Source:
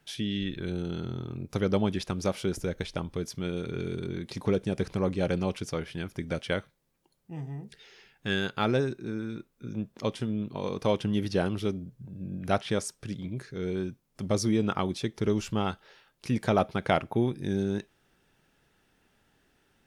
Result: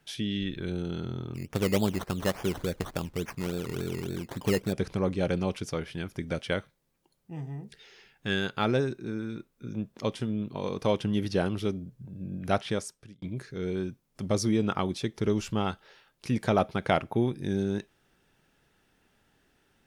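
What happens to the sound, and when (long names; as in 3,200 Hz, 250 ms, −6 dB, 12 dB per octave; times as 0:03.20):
0:01.34–0:04.73: sample-and-hold swept by an LFO 15×, swing 60% 3.5 Hz
0:12.65–0:13.22: fade out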